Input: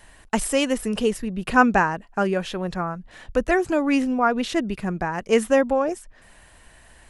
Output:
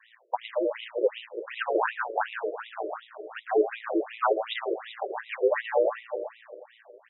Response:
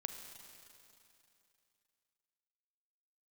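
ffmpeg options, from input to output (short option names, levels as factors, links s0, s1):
-filter_complex "[0:a]equalizer=f=100:t=o:w=0.67:g=-6,equalizer=f=400:t=o:w=0.67:g=7,equalizer=f=4000:t=o:w=0.67:g=10,acrusher=bits=5:mode=log:mix=0:aa=0.000001,asplit=2[s0][s1];[s1]adelay=408,lowpass=f=4100:p=1,volume=0.282,asplit=2[s2][s3];[s3]adelay=408,lowpass=f=4100:p=1,volume=0.19,asplit=2[s4][s5];[s5]adelay=408,lowpass=f=4100:p=1,volume=0.19[s6];[s0][s2][s4][s6]amix=inputs=4:normalize=0,asplit=2[s7][s8];[1:a]atrim=start_sample=2205,adelay=114[s9];[s8][s9]afir=irnorm=-1:irlink=0,volume=0.631[s10];[s7][s10]amix=inputs=2:normalize=0,aeval=exprs='val(0)*sin(2*PI*57*n/s)':c=same,afftfilt=real='re*between(b*sr/1024,440*pow(2800/440,0.5+0.5*sin(2*PI*2.7*pts/sr))/1.41,440*pow(2800/440,0.5+0.5*sin(2*PI*2.7*pts/sr))*1.41)':imag='im*between(b*sr/1024,440*pow(2800/440,0.5+0.5*sin(2*PI*2.7*pts/sr))/1.41,440*pow(2800/440,0.5+0.5*sin(2*PI*2.7*pts/sr))*1.41)':win_size=1024:overlap=0.75"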